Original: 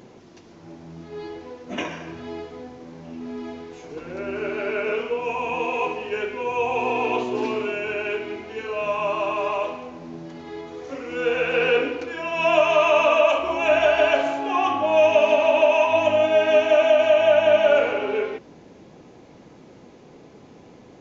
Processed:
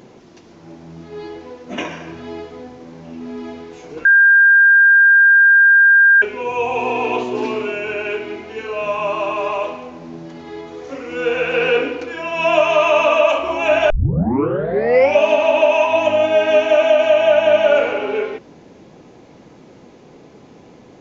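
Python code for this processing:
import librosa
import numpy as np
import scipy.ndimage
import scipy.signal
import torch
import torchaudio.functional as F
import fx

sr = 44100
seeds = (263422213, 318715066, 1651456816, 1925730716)

y = fx.edit(x, sr, fx.bleep(start_s=4.05, length_s=2.17, hz=1600.0, db=-10.0),
    fx.tape_start(start_s=13.9, length_s=1.32), tone=tone)
y = fx.hum_notches(y, sr, base_hz=50, count=2)
y = y * librosa.db_to_amplitude(3.5)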